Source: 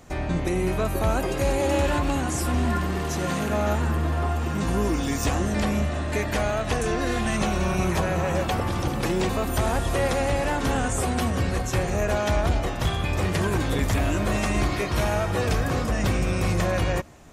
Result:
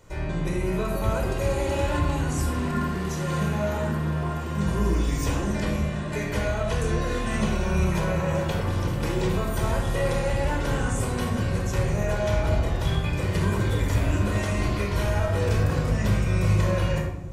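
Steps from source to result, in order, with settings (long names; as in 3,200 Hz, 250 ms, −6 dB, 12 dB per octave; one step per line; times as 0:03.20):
rectangular room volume 2,200 cubic metres, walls furnished, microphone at 4.8 metres
level −7.5 dB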